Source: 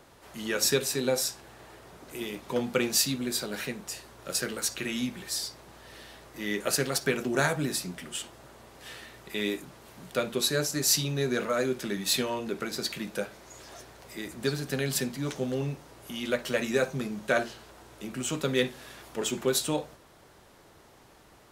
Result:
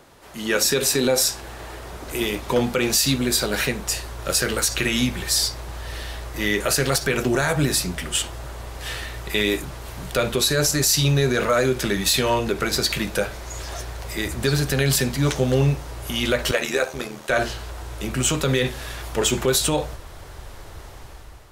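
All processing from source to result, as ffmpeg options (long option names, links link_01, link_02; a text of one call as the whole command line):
ffmpeg -i in.wav -filter_complex "[0:a]asettb=1/sr,asplit=3[link_01][link_02][link_03];[link_01]atrim=end=16.514[link_04];[link_02]atrim=start=16.51:end=17.3,asetpts=PTS-STARTPTS,afade=type=in:duration=0.004:curve=qsin,afade=type=out:start_time=0.786:duration=0.004:curve=qsin,highpass=340,tremolo=f=79:d=0.621[link_05];[link_03]atrim=start=17.296[link_06];[link_04][link_05]acrossfade=duration=0.004:curve1=hsin:curve2=qsin[link_07];[link_07][link_06]acrossfade=duration=0.004:curve1=qsin:curve2=hsin,dynaudnorm=framelen=160:gausssize=7:maxgain=8dB,alimiter=limit=-14dB:level=0:latency=1:release=61,asubboost=boost=9.5:cutoff=66,volume=5dB" out.wav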